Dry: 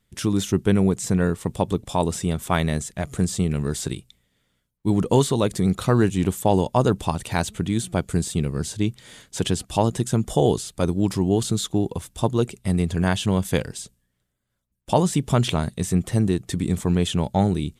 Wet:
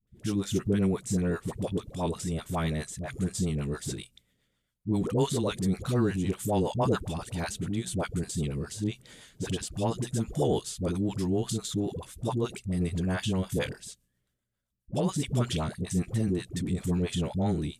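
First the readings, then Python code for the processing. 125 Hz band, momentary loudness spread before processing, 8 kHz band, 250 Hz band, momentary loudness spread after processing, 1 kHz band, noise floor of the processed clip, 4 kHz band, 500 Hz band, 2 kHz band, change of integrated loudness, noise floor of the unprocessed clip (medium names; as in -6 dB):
-7.5 dB, 7 LU, -7.0 dB, -7.0 dB, 7 LU, -10.0 dB, -79 dBFS, -7.5 dB, -7.5 dB, -7.5 dB, -7.5 dB, -74 dBFS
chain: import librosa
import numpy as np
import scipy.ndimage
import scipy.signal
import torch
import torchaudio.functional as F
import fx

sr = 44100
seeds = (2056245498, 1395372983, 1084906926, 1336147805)

y = fx.rotary(x, sr, hz=7.5)
y = fx.dispersion(y, sr, late='highs', ms=73.0, hz=550.0)
y = fx.transient(y, sr, attack_db=-2, sustain_db=4)
y = y * 10.0 ** (-5.5 / 20.0)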